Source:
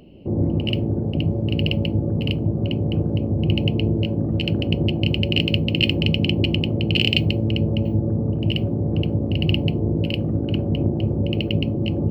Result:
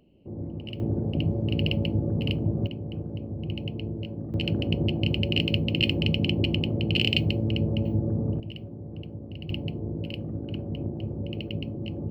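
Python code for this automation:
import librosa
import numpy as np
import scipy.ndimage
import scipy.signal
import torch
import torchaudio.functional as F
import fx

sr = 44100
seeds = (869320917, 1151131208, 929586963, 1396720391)

y = fx.gain(x, sr, db=fx.steps((0.0, -14.5), (0.8, -4.5), (2.67, -12.5), (4.34, -5.0), (8.4, -17.0), (9.5, -11.0)))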